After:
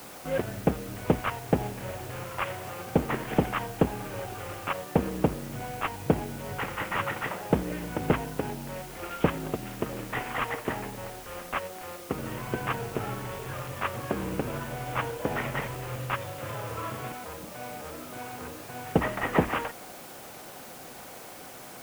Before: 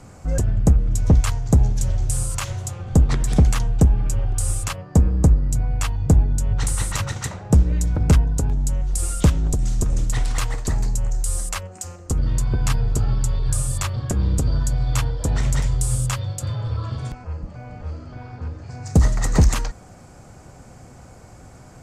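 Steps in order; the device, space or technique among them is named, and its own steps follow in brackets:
army field radio (band-pass filter 320–3,400 Hz; variable-slope delta modulation 16 kbit/s; white noise bed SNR 16 dB)
level +3.5 dB

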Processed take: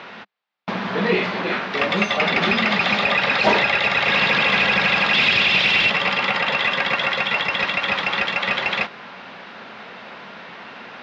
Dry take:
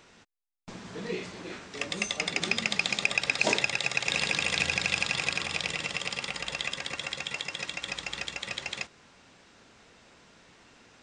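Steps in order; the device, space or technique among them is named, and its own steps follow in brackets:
0:05.13–0:05.90: high shelf with overshoot 1,900 Hz +11.5 dB, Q 1.5
overdrive pedal into a guitar cabinet (mid-hump overdrive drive 34 dB, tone 1,500 Hz, clips at 0 dBFS; loudspeaker in its box 100–4,300 Hz, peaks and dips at 200 Hz +6 dB, 310 Hz −6 dB, 450 Hz −3 dB)
level −2.5 dB

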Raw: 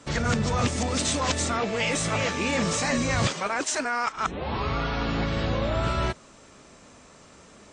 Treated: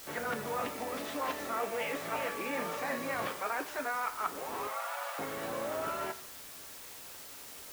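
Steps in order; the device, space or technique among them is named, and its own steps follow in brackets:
wax cylinder (band-pass filter 370–2,000 Hz; tape wow and flutter; white noise bed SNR 11 dB)
0:04.67–0:05.19: Butterworth high-pass 520 Hz 96 dB per octave
coupled-rooms reverb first 0.5 s, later 1.6 s, from −19 dB, DRR 8 dB
level −6.5 dB

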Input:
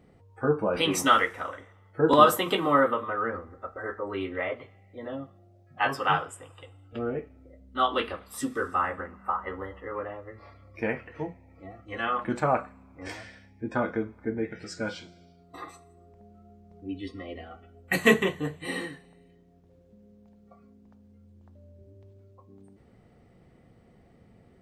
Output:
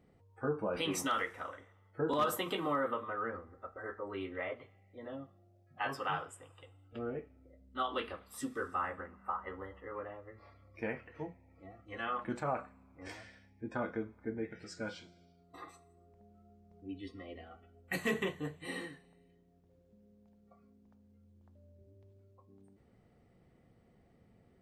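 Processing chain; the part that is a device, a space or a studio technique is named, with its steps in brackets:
clipper into limiter (hard clipping −9.5 dBFS, distortion −25 dB; brickwall limiter −15.5 dBFS, peak gain reduction 6 dB)
level −8.5 dB

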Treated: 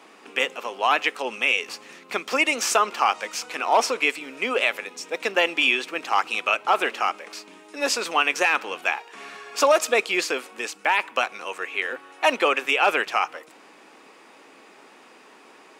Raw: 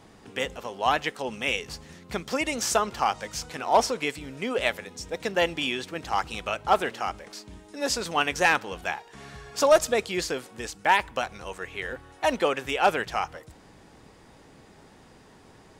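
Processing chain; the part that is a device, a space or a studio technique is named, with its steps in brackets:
laptop speaker (high-pass filter 270 Hz 24 dB per octave; parametric band 1,200 Hz +6 dB 0.58 octaves; parametric band 2,500 Hz +9.5 dB 0.47 octaves; brickwall limiter −10.5 dBFS, peak gain reduction 8.5 dB)
level +2.5 dB

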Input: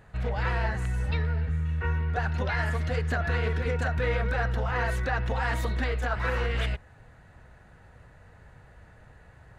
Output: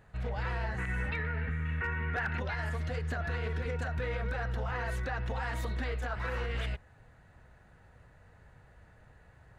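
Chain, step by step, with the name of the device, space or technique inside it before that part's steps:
0:00.78–0:02.40: drawn EQ curve 140 Hz 0 dB, 210 Hz +8 dB, 700 Hz +4 dB, 2,100 Hz +15 dB, 4,700 Hz −3 dB
clipper into limiter (hard clipping −13.5 dBFS, distortion −33 dB; brickwall limiter −20 dBFS, peak gain reduction 6.5 dB)
level −5.5 dB

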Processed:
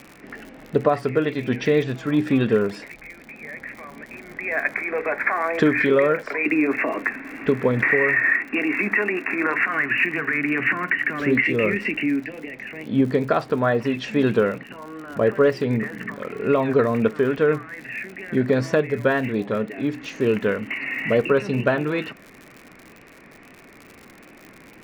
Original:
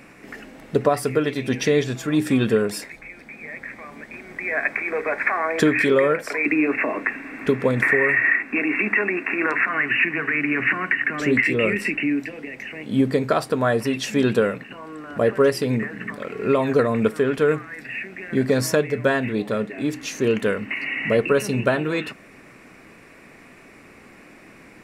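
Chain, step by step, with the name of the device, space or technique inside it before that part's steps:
lo-fi chain (low-pass filter 3,100 Hz 12 dB per octave; tape wow and flutter 47 cents; surface crackle 83 per second −33 dBFS)

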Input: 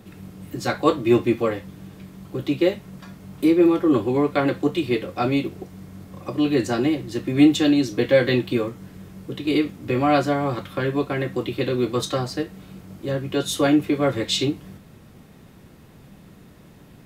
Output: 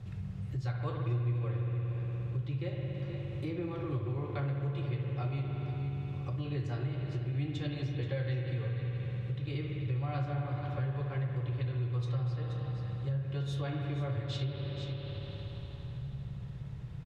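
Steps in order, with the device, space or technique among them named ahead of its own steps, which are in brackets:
parametric band 210 Hz −3.5 dB 0.75 octaves
single-tap delay 479 ms −12.5 dB
spring reverb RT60 3.6 s, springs 58 ms, chirp 25 ms, DRR 1 dB
dynamic equaliser 7,600 Hz, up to −5 dB, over −47 dBFS, Q 0.88
jukebox (low-pass filter 6,200 Hz 12 dB per octave; low shelf with overshoot 180 Hz +12 dB, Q 3; downward compressor 3 to 1, threshold −28 dBFS, peak gain reduction 17.5 dB)
level −8 dB

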